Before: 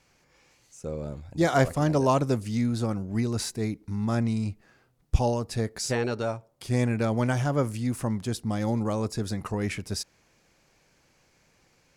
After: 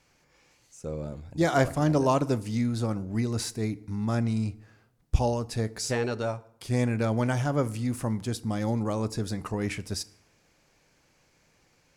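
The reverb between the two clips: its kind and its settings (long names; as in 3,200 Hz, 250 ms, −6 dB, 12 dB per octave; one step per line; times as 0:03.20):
feedback delay network reverb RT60 0.72 s, low-frequency decay 1.05×, high-frequency decay 0.75×, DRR 16 dB
level −1 dB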